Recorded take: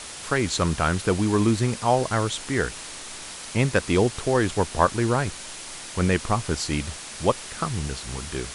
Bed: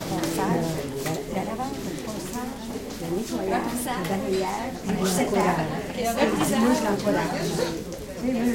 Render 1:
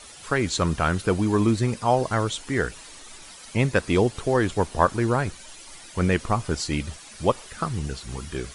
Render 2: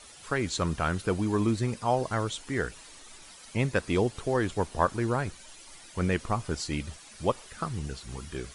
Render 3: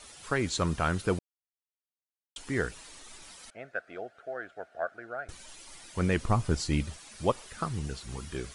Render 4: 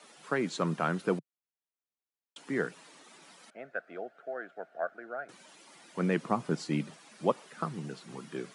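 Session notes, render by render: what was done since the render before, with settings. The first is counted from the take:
noise reduction 11 dB, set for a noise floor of -38 dBFS
trim -5.5 dB
1.19–2.36 s: mute; 3.50–5.29 s: two resonant band-passes 990 Hz, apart 1.1 oct; 6.16–6.84 s: bass shelf 220 Hz +7.5 dB
steep high-pass 150 Hz 48 dB/octave; treble shelf 3.2 kHz -11 dB

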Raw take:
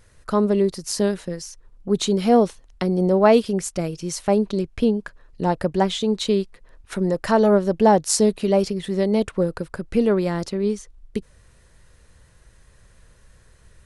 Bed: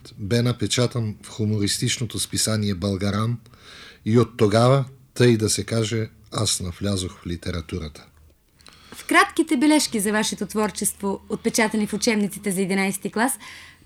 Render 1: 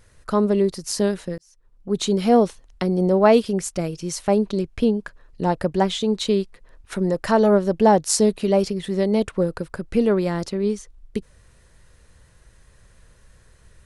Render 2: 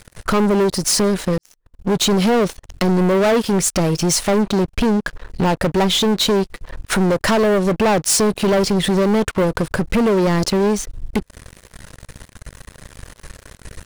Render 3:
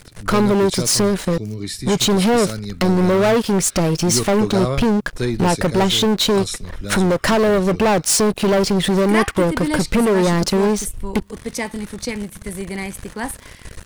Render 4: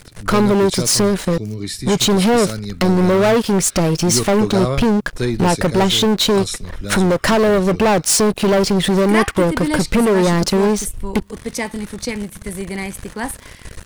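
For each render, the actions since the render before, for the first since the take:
1.38–2.12 s: fade in
compression 2:1, threshold -29 dBFS, peak gain reduction 10.5 dB; waveshaping leveller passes 5
add bed -5.5 dB
trim +1.5 dB

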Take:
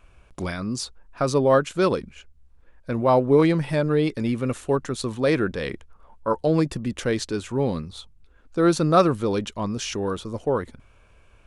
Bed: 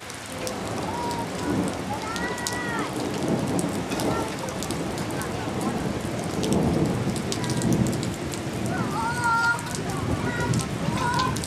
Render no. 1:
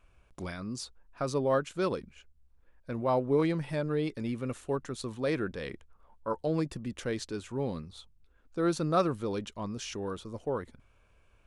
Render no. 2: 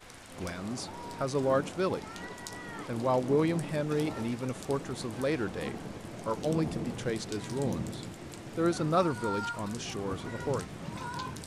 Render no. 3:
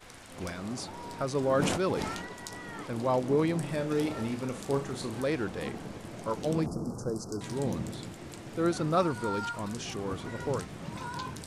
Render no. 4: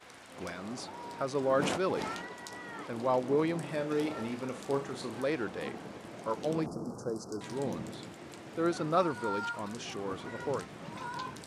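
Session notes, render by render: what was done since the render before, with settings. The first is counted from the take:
trim -9.5 dB
add bed -14 dB
1.39–2.22 s: decay stretcher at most 34 dB/s; 3.56–5.20 s: flutter echo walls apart 6.2 m, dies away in 0.28 s; 6.66–7.41 s: elliptic band-stop 1.3–5.1 kHz
high-pass 290 Hz 6 dB/octave; treble shelf 5.2 kHz -7.5 dB

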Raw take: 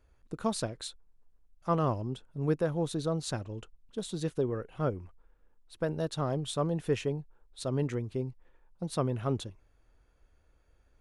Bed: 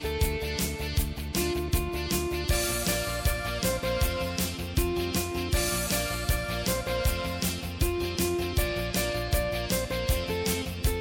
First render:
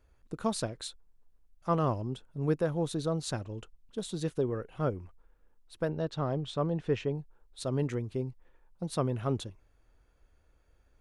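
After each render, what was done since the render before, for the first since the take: 5.88–7.15 s: distance through air 130 m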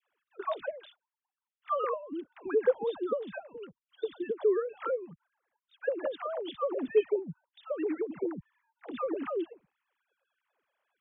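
formants replaced by sine waves; phase dispersion lows, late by 110 ms, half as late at 480 Hz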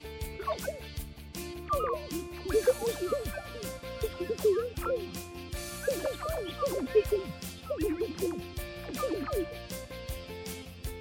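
add bed -12 dB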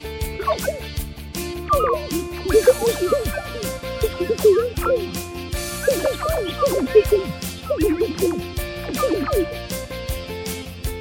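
trim +12 dB; peak limiter -3 dBFS, peak gain reduction 1 dB

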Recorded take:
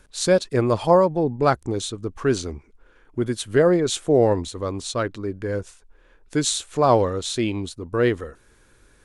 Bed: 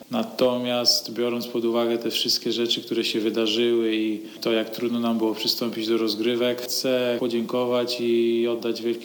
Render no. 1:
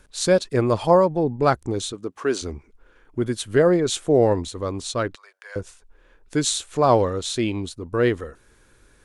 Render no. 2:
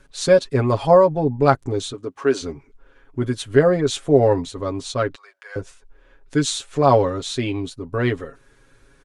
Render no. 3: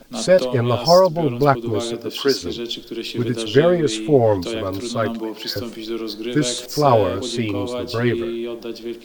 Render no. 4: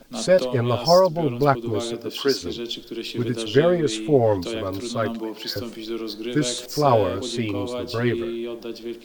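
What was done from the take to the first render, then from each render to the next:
1.92–2.41 s: high-pass 170 Hz -> 370 Hz; 5.15–5.56 s: Bessel high-pass 1.2 kHz, order 8
treble shelf 8.2 kHz -10.5 dB; comb 7.3 ms, depth 76%
add bed -4 dB
trim -3 dB

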